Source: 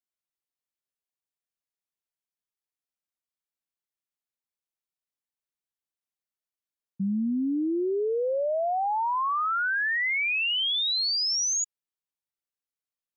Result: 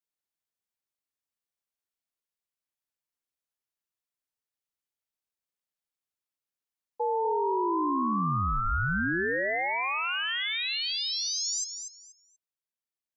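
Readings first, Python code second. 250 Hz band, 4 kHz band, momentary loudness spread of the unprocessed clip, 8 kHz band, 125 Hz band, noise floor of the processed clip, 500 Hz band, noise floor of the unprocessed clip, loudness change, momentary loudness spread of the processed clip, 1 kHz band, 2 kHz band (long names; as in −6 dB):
−3.5 dB, −4.5 dB, 4 LU, can't be measured, +9.0 dB, below −85 dBFS, −3.5 dB, below −85 dBFS, −2.5 dB, 3 LU, 0.0 dB, −2.0 dB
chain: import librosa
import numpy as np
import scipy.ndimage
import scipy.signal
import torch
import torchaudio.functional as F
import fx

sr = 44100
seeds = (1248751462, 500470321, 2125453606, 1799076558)

p1 = fx.rider(x, sr, range_db=10, speed_s=0.5)
p2 = p1 * np.sin(2.0 * np.pi * 670.0 * np.arange(len(p1)) / sr)
y = p2 + fx.echo_feedback(p2, sr, ms=240, feedback_pct=23, wet_db=-8.0, dry=0)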